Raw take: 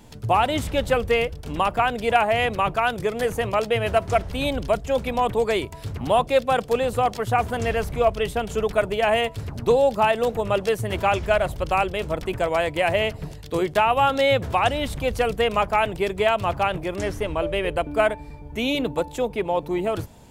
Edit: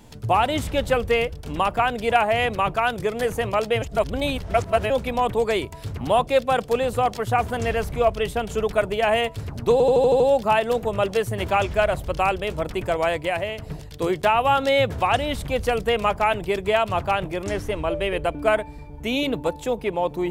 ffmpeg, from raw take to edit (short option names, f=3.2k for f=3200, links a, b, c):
-filter_complex "[0:a]asplit=10[a][b][c][d][e][f][g][h][i][j];[a]atrim=end=3.822[k];[b]atrim=start=3.818:end=4.902,asetpts=PTS-STARTPTS,areverse[l];[c]atrim=start=4.898:end=9.802[m];[d]atrim=start=9.718:end=9.802[n];[e]atrim=start=9.718:end=9.802[o];[f]atrim=start=9.718:end=9.802[p];[g]atrim=start=9.718:end=9.802[q];[h]atrim=start=9.718:end=9.802[r];[i]atrim=start=9.718:end=13.1,asetpts=PTS-STARTPTS,afade=t=out:st=2.912:d=0.47:silence=0.316228[s];[j]atrim=start=13.1,asetpts=PTS-STARTPTS,afade=t=in:d=0.004:c=hsin:silence=0.316228[t];[k][l]acrossfade=d=0.004:c1=hsin:c2=hsin[u];[u][m]acrossfade=d=0.004:c1=hsin:c2=hsin[v];[v][n]acrossfade=d=0.004:c1=hsin:c2=hsin[w];[w][o]acrossfade=d=0.004:c1=hsin:c2=hsin[x];[x][p]acrossfade=d=0.004:c1=hsin:c2=hsin[y];[y][q]acrossfade=d=0.004:c1=hsin:c2=hsin[z];[z][r]acrossfade=d=0.004:c1=hsin:c2=hsin[aa];[s][t]concat=n=2:v=0:a=1[ab];[aa][ab]acrossfade=d=0.004:c1=hsin:c2=hsin"